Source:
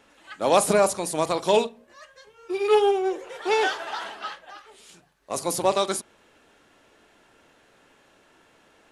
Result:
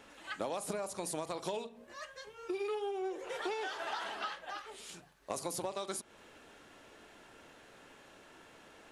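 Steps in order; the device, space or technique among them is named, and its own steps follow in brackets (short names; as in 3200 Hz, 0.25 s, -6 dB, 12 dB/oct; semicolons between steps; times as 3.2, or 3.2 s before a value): serial compression, leveller first (compressor 3:1, threshold -24 dBFS, peak gain reduction 8.5 dB; compressor 5:1, threshold -37 dBFS, peak gain reduction 14.5 dB); gain +1 dB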